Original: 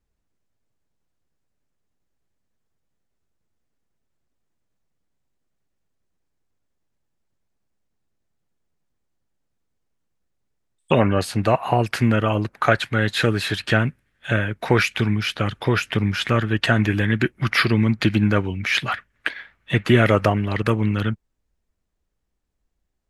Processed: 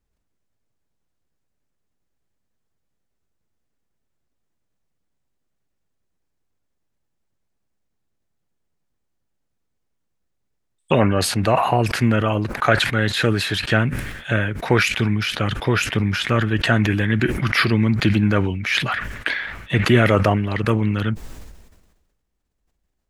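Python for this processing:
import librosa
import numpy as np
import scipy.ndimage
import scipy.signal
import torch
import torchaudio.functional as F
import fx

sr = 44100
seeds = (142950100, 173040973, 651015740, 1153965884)

y = fx.sustainer(x, sr, db_per_s=48.0)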